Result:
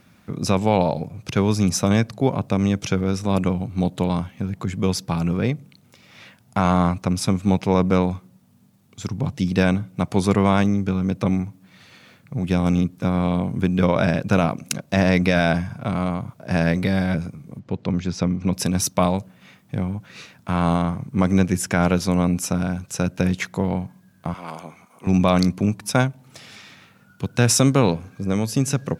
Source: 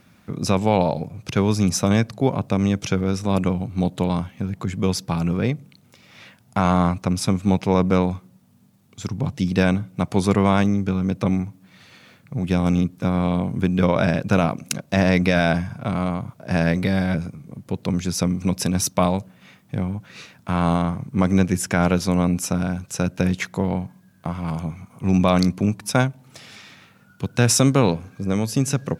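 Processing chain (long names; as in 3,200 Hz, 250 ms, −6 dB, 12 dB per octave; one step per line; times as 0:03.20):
0:17.59–0:18.53: high-frequency loss of the air 140 metres
0:24.34–0:25.07: high-pass filter 390 Hz 12 dB per octave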